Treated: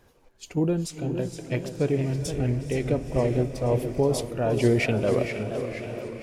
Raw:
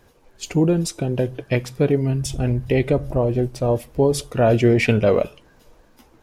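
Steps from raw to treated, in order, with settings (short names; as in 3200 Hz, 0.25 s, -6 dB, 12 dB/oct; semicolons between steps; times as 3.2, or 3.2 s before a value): diffused feedback echo 0.471 s, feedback 54%, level -10 dB; random-step tremolo; warbling echo 0.471 s, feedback 53%, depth 174 cents, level -9.5 dB; gain -4 dB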